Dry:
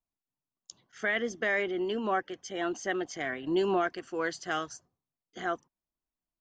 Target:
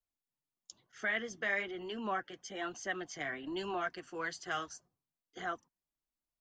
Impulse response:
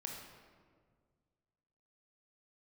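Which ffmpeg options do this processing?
-filter_complex "[0:a]acrossover=split=210|700[link_01][link_02][link_03];[link_02]acompressor=threshold=-42dB:ratio=6[link_04];[link_01][link_04][link_03]amix=inputs=3:normalize=0,flanger=delay=1.4:depth=5.9:regen=-42:speed=1.1:shape=triangular"

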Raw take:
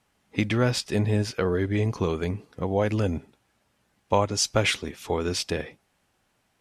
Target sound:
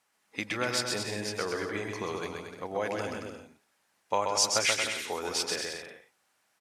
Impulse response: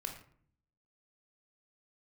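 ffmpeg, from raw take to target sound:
-af "highpass=frequency=1200:poles=1,equalizer=frequency=3100:width=1.7:gain=-4.5,aecho=1:1:130|227.5|300.6|355.5|396.6:0.631|0.398|0.251|0.158|0.1"

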